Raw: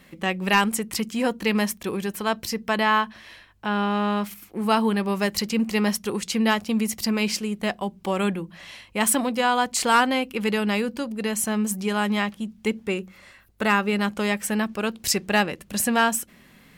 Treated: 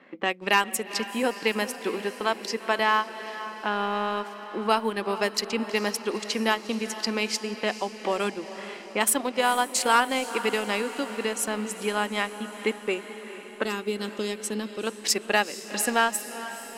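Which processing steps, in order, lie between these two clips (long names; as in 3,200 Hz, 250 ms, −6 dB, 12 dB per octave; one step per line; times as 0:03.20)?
high-pass filter 260 Hz 24 dB per octave
low-pass that shuts in the quiet parts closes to 1,800 Hz, open at −20.5 dBFS
0:13.65–0:14.87: flat-topped bell 1,200 Hz −12 dB 2.5 octaves
in parallel at +0.5 dB: downward compressor, threshold −35 dBFS, peak gain reduction 20 dB
on the sum: transient designer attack +2 dB, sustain −8 dB
on a send: feedback delay with all-pass diffusion 452 ms, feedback 63%, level −13 dB
on the sum: level −3.5 dB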